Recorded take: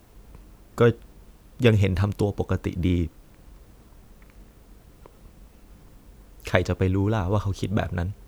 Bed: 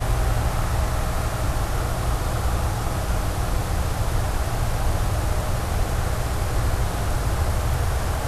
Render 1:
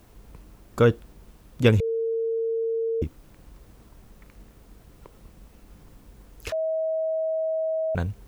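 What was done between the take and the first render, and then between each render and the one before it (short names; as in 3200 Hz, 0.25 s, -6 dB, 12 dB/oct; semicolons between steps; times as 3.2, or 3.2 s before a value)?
1.8–3.02 bleep 454 Hz -23 dBFS; 6.52–7.95 bleep 640 Hz -23 dBFS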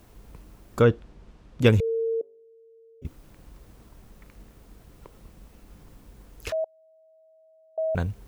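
0.82–1.61 air absorption 100 m; 2.21–3.05 metallic resonator 130 Hz, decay 0.74 s, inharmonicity 0.008; 6.64–7.78 flipped gate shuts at -32 dBFS, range -32 dB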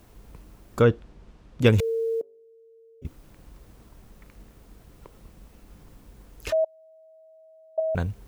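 1.78–2.2 spectral whitening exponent 0.6; 6.48–7.8 comb 3.3 ms, depth 87%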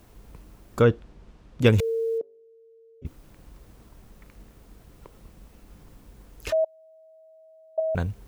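2.18–3.06 air absorption 110 m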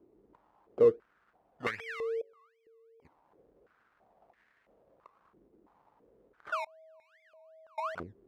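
decimation with a swept rate 22×, swing 60% 2.6 Hz; stepped band-pass 3 Hz 360–1800 Hz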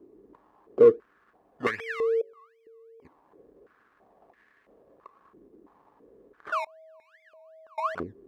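in parallel at -6 dB: soft clip -24.5 dBFS, distortion -8 dB; on the sum: small resonant body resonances 280/400/1100/1700 Hz, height 7 dB, ringing for 25 ms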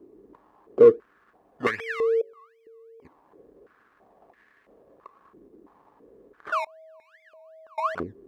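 gain +2.5 dB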